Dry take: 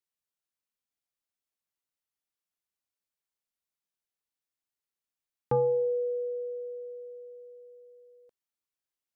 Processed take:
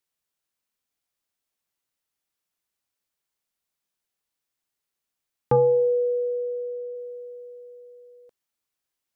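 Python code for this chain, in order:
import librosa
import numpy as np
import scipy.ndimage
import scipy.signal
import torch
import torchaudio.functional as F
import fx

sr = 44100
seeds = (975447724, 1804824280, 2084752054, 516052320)

y = fx.lowpass(x, sr, hz=1200.0, slope=12, at=(5.56, 6.94), fade=0.02)
y = y * 10.0 ** (7.0 / 20.0)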